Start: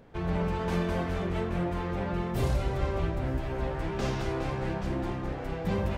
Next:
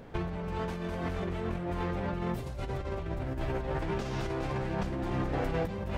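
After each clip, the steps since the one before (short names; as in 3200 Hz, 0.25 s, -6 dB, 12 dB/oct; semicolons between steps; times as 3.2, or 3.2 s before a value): negative-ratio compressor -35 dBFS, ratio -1; gain +1.5 dB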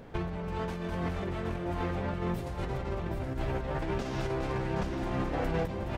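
echo 0.771 s -7.5 dB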